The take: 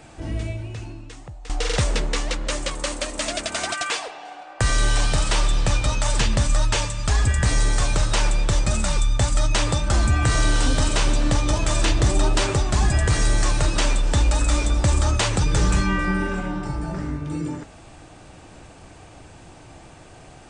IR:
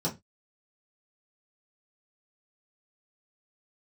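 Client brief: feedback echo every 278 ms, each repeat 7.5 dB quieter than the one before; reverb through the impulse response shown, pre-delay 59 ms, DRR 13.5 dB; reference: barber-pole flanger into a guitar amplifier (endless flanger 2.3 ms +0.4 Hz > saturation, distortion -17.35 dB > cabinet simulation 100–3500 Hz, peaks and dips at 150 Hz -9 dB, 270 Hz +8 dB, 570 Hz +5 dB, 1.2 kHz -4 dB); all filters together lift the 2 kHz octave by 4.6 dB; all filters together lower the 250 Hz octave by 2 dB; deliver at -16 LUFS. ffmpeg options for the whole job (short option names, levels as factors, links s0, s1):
-filter_complex "[0:a]equalizer=f=250:t=o:g=-6.5,equalizer=f=2000:t=o:g=6.5,aecho=1:1:278|556|834|1112|1390:0.422|0.177|0.0744|0.0312|0.0131,asplit=2[s0][s1];[1:a]atrim=start_sample=2205,adelay=59[s2];[s1][s2]afir=irnorm=-1:irlink=0,volume=0.1[s3];[s0][s3]amix=inputs=2:normalize=0,asplit=2[s4][s5];[s5]adelay=2.3,afreqshift=0.4[s6];[s4][s6]amix=inputs=2:normalize=1,asoftclip=threshold=0.178,highpass=100,equalizer=f=150:t=q:w=4:g=-9,equalizer=f=270:t=q:w=4:g=8,equalizer=f=570:t=q:w=4:g=5,equalizer=f=1200:t=q:w=4:g=-4,lowpass=f=3500:w=0.5412,lowpass=f=3500:w=1.3066,volume=4.22"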